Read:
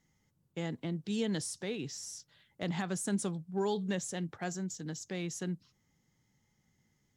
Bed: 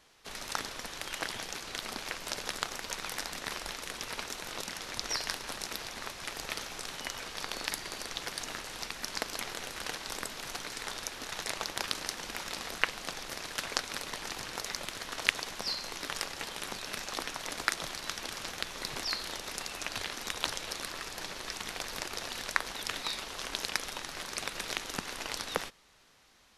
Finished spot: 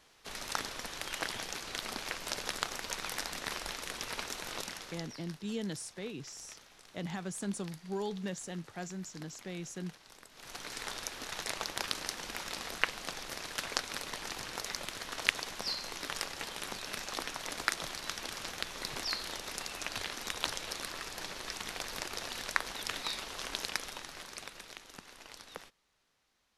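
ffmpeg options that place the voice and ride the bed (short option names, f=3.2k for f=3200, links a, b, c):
-filter_complex "[0:a]adelay=4350,volume=-4dB[a];[1:a]volume=15.5dB,afade=t=out:st=4.57:d=0.55:silence=0.141254,afade=t=in:st=10.31:d=0.44:silence=0.158489,afade=t=out:st=23.5:d=1.23:silence=0.251189[b];[a][b]amix=inputs=2:normalize=0"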